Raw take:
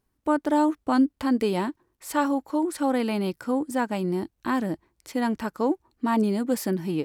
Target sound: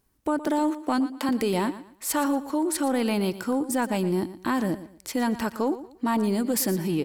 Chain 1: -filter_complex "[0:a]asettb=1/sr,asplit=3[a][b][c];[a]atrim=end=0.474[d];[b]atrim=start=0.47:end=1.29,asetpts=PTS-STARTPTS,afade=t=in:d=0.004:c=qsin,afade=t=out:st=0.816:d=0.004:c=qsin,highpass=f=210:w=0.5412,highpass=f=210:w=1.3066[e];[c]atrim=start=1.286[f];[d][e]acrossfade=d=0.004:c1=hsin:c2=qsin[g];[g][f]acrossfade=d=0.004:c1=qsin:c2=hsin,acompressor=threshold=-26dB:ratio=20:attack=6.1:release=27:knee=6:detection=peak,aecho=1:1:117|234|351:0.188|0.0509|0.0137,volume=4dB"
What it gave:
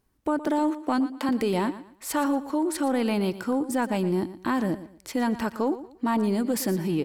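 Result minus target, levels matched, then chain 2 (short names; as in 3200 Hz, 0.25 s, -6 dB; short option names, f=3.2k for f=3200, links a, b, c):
8000 Hz band -4.5 dB
-filter_complex "[0:a]asettb=1/sr,asplit=3[a][b][c];[a]atrim=end=0.474[d];[b]atrim=start=0.47:end=1.29,asetpts=PTS-STARTPTS,afade=t=in:d=0.004:c=qsin,afade=t=out:st=0.816:d=0.004:c=qsin,highpass=f=210:w=0.5412,highpass=f=210:w=1.3066[e];[c]atrim=start=1.286[f];[d][e]acrossfade=d=0.004:c1=hsin:c2=qsin[g];[g][f]acrossfade=d=0.004:c1=qsin:c2=hsin,acompressor=threshold=-26dB:ratio=20:attack=6.1:release=27:knee=6:detection=peak,highshelf=f=5k:g=6.5,aecho=1:1:117|234|351:0.188|0.0509|0.0137,volume=4dB"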